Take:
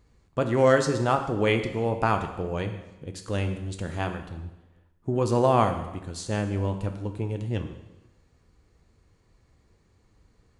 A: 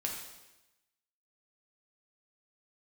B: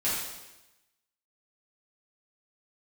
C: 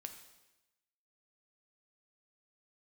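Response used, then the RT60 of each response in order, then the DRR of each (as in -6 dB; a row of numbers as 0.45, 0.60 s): C; 1.0, 1.0, 1.0 s; -1.0, -10.5, 5.5 dB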